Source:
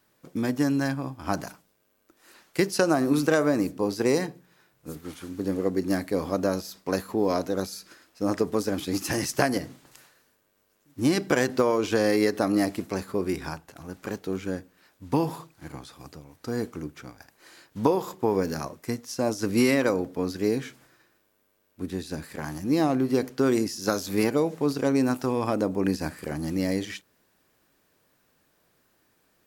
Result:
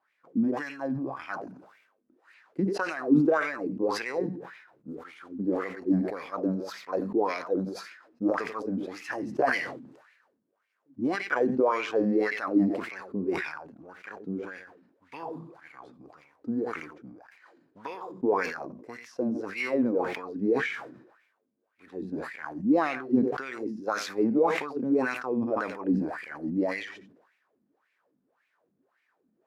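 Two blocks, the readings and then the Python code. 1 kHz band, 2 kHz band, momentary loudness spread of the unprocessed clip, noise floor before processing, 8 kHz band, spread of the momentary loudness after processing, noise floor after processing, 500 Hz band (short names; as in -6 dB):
-0.5 dB, +0.5 dB, 16 LU, -69 dBFS, under -10 dB, 17 LU, -76 dBFS, -3.5 dB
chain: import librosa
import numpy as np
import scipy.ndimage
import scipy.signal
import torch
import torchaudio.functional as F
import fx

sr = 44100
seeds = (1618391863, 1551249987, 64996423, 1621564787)

p1 = x + fx.echo_single(x, sr, ms=90, db=-13.5, dry=0)
p2 = fx.wah_lfo(p1, sr, hz=1.8, low_hz=210.0, high_hz=2300.0, q=5.0)
p3 = fx.sustainer(p2, sr, db_per_s=66.0)
y = p3 * librosa.db_to_amplitude(5.5)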